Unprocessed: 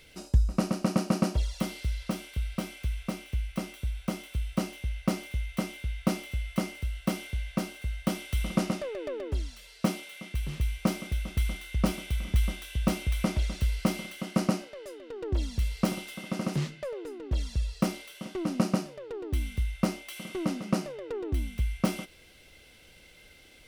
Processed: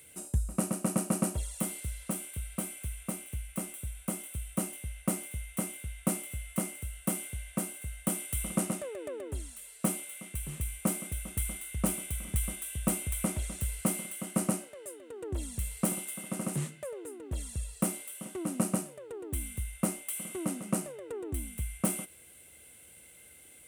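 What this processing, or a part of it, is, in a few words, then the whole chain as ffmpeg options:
budget condenser microphone: -af "highpass=frequency=61:width=0.5412,highpass=frequency=61:width=1.3066,highshelf=frequency=6700:width_type=q:width=3:gain=11,volume=-4dB"

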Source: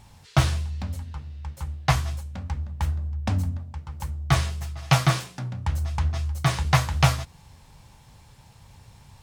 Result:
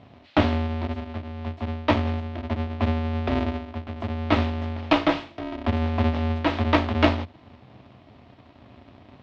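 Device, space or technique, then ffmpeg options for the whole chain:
ring modulator pedal into a guitar cabinet: -af "aeval=exprs='val(0)*sgn(sin(2*PI*160*n/s))':channel_layout=same,highpass=86,equalizer=frequency=87:width_type=q:width=4:gain=8,equalizer=frequency=130:width_type=q:width=4:gain=7,equalizer=frequency=680:width_type=q:width=4:gain=5,equalizer=frequency=1500:width_type=q:width=4:gain=-4,lowpass=frequency=3600:width=0.5412,lowpass=frequency=3600:width=1.3066"

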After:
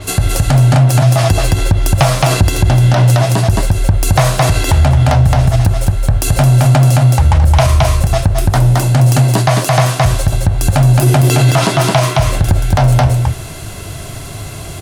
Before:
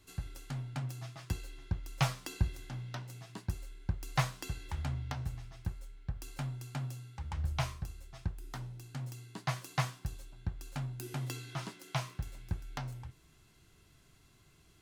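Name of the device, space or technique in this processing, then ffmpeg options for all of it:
loud club master: -af "equalizer=frequency=100:width_type=o:width=0.67:gain=8,equalizer=frequency=630:width_type=o:width=0.67:gain=12,equalizer=frequency=10000:width_type=o:width=0.67:gain=7,aecho=1:1:218:0.631,acompressor=threshold=-33dB:ratio=2,asoftclip=type=hard:threshold=-24dB,alimiter=level_in=33.5dB:limit=-1dB:release=50:level=0:latency=1,adynamicequalizer=threshold=0.0316:dfrequency=7200:dqfactor=0.7:tfrequency=7200:tqfactor=0.7:attack=5:release=100:ratio=0.375:range=2:mode=cutabove:tftype=highshelf,volume=-1dB"

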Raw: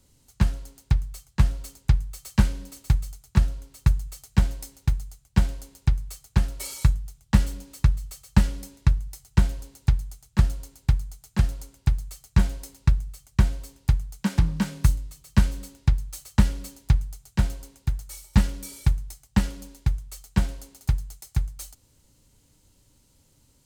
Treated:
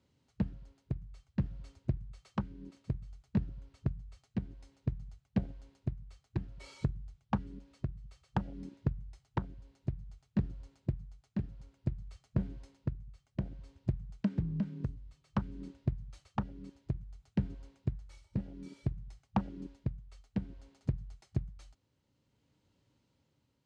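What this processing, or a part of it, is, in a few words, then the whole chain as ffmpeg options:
AM radio: -af "afwtdn=0.0282,highpass=100,lowpass=3300,lowpass=9500,acompressor=threshold=-34dB:ratio=10,asoftclip=type=tanh:threshold=-29dB,tremolo=f=0.57:d=0.39,volume=9dB"

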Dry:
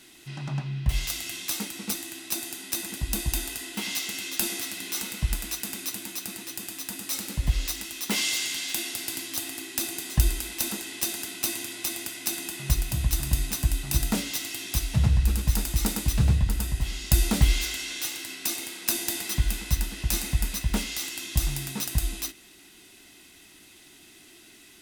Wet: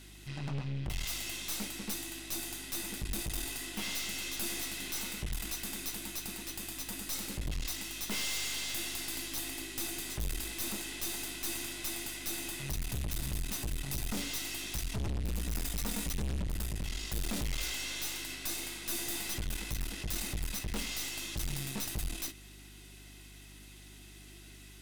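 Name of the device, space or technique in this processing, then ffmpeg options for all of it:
valve amplifier with mains hum: -filter_complex "[0:a]asettb=1/sr,asplit=3[link_01][link_02][link_03];[link_01]atrim=end=15.344[link_04];[link_02]atrim=start=15.34:end=16.43,asetpts=PTS-STARTPTS,afade=type=in:duration=0.004:curve=qsin,afade=type=out:start_time=1.086:duration=0.004:curve=qsin,aecho=1:1:4.2:0.72,atrim=end_sample=48069[link_05];[link_03]atrim=start=16.426[link_06];[link_04][link_05]acrossfade=duration=0.004:curve1=hsin:curve2=qsin[link_07];[link_07][link_06]acrossfade=duration=0.004:curve1=qsin:curve2=hsin,aeval=exprs='(tanh(44.7*val(0)+0.65)-tanh(0.65))/44.7':channel_layout=same,aeval=exprs='val(0)+0.00224*(sin(2*PI*50*n/s)+sin(2*PI*2*50*n/s)/2+sin(2*PI*3*50*n/s)/3+sin(2*PI*4*50*n/s)/4+sin(2*PI*5*50*n/s)/5)':channel_layout=same"

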